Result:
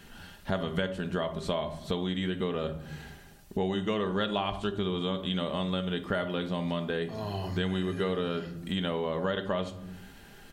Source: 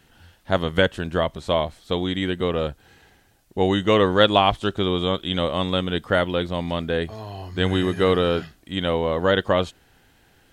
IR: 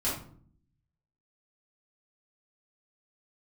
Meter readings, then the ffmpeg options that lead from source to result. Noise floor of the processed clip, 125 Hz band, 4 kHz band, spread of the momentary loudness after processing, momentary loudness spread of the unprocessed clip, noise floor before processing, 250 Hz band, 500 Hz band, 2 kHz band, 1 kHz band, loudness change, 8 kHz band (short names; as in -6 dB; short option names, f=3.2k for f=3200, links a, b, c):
-52 dBFS, -7.0 dB, -10.5 dB, 13 LU, 9 LU, -58 dBFS, -7.0 dB, -10.5 dB, -10.5 dB, -11.0 dB, -9.5 dB, n/a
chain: -filter_complex "[0:a]aecho=1:1:5:0.38,asplit=2[a][b];[1:a]atrim=start_sample=2205[c];[b][c]afir=irnorm=-1:irlink=0,volume=-15dB[d];[a][d]amix=inputs=2:normalize=0,acompressor=threshold=-34dB:ratio=4,volume=3.5dB"